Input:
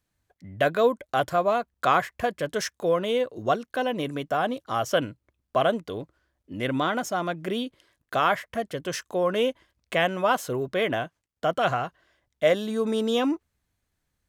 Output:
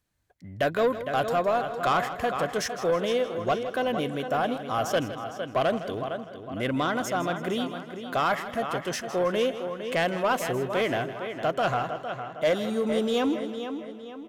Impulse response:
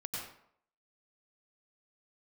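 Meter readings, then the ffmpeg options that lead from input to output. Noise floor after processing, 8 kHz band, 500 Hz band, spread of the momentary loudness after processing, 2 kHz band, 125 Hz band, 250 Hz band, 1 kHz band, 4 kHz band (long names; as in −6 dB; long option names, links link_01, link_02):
−42 dBFS, 0.0 dB, −1.0 dB, 8 LU, −1.0 dB, 0.0 dB, 0.0 dB, −1.0 dB, −1.0 dB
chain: -filter_complex "[0:a]asplit=2[link_01][link_02];[link_02]adelay=458,lowpass=frequency=4700:poles=1,volume=-10dB,asplit=2[link_03][link_04];[link_04]adelay=458,lowpass=frequency=4700:poles=1,volume=0.44,asplit=2[link_05][link_06];[link_06]adelay=458,lowpass=frequency=4700:poles=1,volume=0.44,asplit=2[link_07][link_08];[link_08]adelay=458,lowpass=frequency=4700:poles=1,volume=0.44,asplit=2[link_09][link_10];[link_10]adelay=458,lowpass=frequency=4700:poles=1,volume=0.44[link_11];[link_03][link_05][link_07][link_09][link_11]amix=inputs=5:normalize=0[link_12];[link_01][link_12]amix=inputs=2:normalize=0,asoftclip=type=tanh:threshold=-17dB,asplit=2[link_13][link_14];[link_14]aecho=0:1:160|320|480|640:0.224|0.0918|0.0376|0.0154[link_15];[link_13][link_15]amix=inputs=2:normalize=0"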